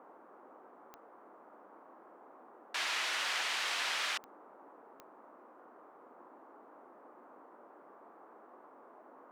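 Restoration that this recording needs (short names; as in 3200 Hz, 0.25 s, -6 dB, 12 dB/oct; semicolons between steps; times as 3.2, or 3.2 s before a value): de-click; noise print and reduce 27 dB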